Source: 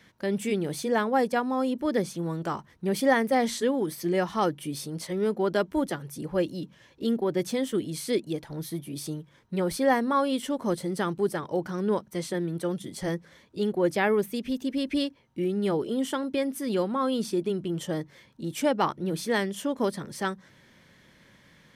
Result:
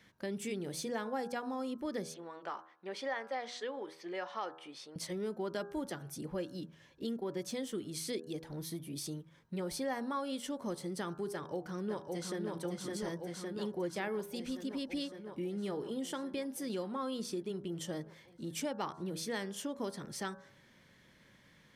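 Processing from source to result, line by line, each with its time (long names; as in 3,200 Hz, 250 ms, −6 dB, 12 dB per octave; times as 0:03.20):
0:02.14–0:04.96: band-pass filter 580–3,400 Hz
0:11.33–0:12.40: delay throw 560 ms, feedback 75%, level −3.5 dB
whole clip: hum removal 80.85 Hz, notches 21; dynamic equaliser 5,700 Hz, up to +5 dB, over −50 dBFS, Q 0.93; downward compressor 2.5 to 1, threshold −31 dBFS; level −6 dB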